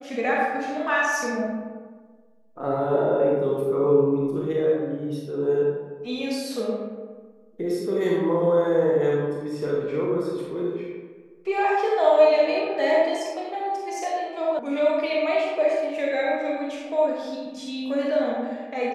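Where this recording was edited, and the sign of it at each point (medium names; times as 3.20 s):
14.59 s: sound stops dead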